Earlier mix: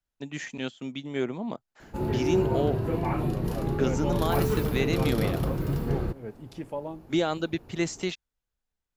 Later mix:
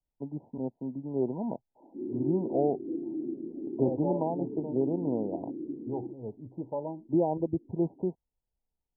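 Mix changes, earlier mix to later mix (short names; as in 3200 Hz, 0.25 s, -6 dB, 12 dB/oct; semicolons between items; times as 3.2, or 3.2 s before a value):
background: add Butterworth band-pass 300 Hz, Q 3.1; master: add brick-wall FIR low-pass 1000 Hz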